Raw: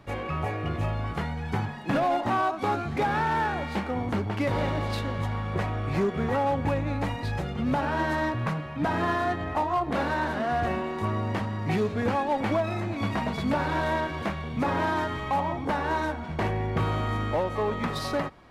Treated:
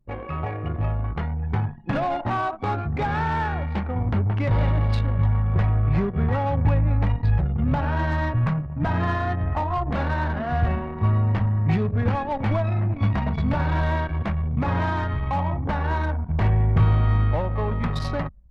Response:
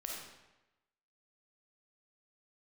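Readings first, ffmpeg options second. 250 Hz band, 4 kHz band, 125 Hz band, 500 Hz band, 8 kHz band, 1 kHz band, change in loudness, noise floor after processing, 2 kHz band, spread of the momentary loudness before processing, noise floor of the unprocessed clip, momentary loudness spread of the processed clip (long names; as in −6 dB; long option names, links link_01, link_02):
+1.5 dB, −3.0 dB, +10.0 dB, −1.5 dB, can't be measured, −0.5 dB, +4.5 dB, −33 dBFS, −0.5 dB, 5 LU, −35 dBFS, 6 LU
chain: -filter_complex "[0:a]asplit=2[link_01][link_02];[1:a]atrim=start_sample=2205[link_03];[link_02][link_03]afir=irnorm=-1:irlink=0,volume=-15.5dB[link_04];[link_01][link_04]amix=inputs=2:normalize=0,asubboost=boost=5.5:cutoff=130,anlmdn=39.8"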